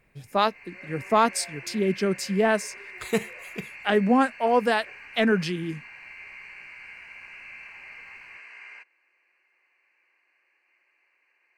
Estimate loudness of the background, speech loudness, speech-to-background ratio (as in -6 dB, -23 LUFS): -41.5 LUFS, -25.0 LUFS, 16.5 dB